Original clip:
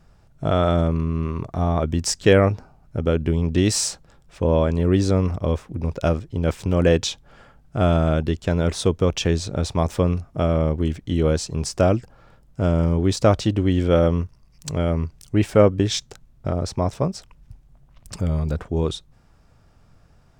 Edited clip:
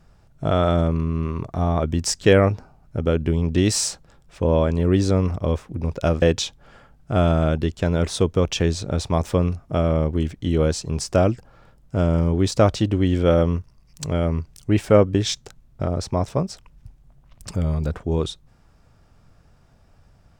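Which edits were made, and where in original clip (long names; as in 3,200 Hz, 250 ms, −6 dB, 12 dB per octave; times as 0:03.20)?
0:06.22–0:06.87: remove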